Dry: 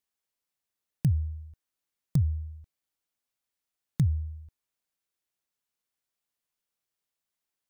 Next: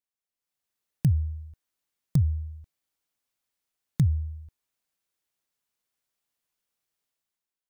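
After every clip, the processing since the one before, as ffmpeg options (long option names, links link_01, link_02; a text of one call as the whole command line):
ffmpeg -i in.wav -af "dynaudnorm=framelen=110:gausssize=9:maxgain=11dB,volume=-8dB" out.wav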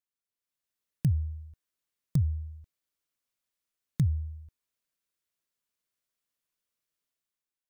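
ffmpeg -i in.wav -af "equalizer=frequency=800:width=7.9:gain=-9.5,volume=-3.5dB" out.wav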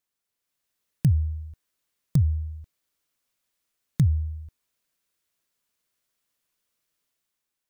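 ffmpeg -i in.wav -af "alimiter=limit=-18.5dB:level=0:latency=1:release=461,volume=8dB" out.wav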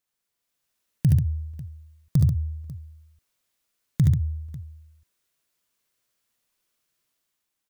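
ffmpeg -i in.wav -af "aecho=1:1:44|58|72|80|138|545:0.133|0.168|0.708|0.141|0.422|0.119" out.wav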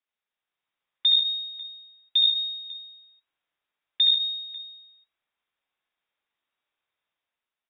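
ffmpeg -i in.wav -af "lowpass=frequency=3200:width_type=q:width=0.5098,lowpass=frequency=3200:width_type=q:width=0.6013,lowpass=frequency=3200:width_type=q:width=0.9,lowpass=frequency=3200:width_type=q:width=2.563,afreqshift=-3800,volume=-2dB" out.wav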